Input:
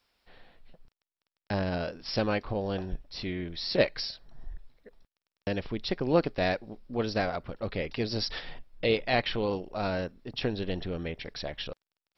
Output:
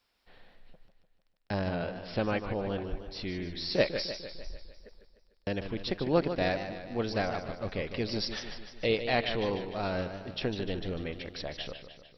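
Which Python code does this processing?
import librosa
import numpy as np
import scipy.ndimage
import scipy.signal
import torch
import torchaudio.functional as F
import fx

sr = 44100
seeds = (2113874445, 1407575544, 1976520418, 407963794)

y = fx.lowpass(x, sr, hz=3800.0, slope=24, at=(1.68, 2.84))
y = fx.echo_warbled(y, sr, ms=150, feedback_pct=57, rate_hz=2.8, cents=108, wet_db=-9.5)
y = y * librosa.db_to_amplitude(-2.0)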